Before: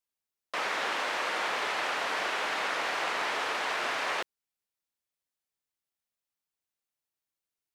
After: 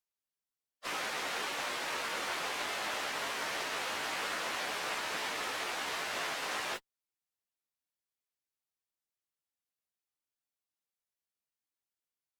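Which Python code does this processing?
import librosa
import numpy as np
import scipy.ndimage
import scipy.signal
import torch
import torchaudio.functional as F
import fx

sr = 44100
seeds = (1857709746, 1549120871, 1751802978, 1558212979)

y = fx.spec_flatten(x, sr, power=0.66)
y = fx.stretch_vocoder_free(y, sr, factor=1.6)
y = fx.cheby_harmonics(y, sr, harmonics=(4,), levels_db=(-24,), full_scale_db=-21.0)
y = y * 10.0 ** (-2.5 / 20.0)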